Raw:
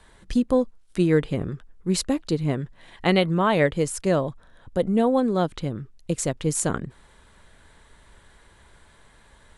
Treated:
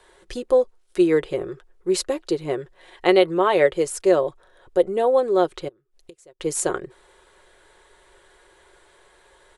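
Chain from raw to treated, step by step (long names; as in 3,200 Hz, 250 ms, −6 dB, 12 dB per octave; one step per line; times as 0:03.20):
0:05.68–0:06.40: gate with flip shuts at −29 dBFS, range −26 dB
low shelf with overshoot 290 Hz −9.5 dB, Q 3
comb filter 5.5 ms, depth 36%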